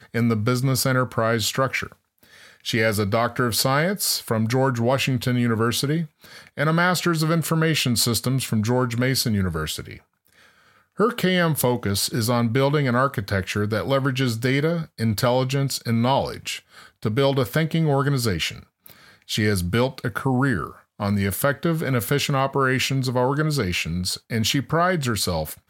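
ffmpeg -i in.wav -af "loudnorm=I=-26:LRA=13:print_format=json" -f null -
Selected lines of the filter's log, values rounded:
"input_i" : "-22.2",
"input_tp" : "-5.7",
"input_lra" : "2.1",
"input_thresh" : "-32.6",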